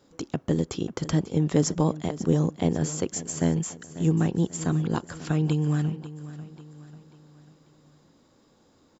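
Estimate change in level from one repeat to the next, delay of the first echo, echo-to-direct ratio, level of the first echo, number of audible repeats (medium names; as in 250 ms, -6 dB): -7.0 dB, 542 ms, -14.0 dB, -15.0 dB, 3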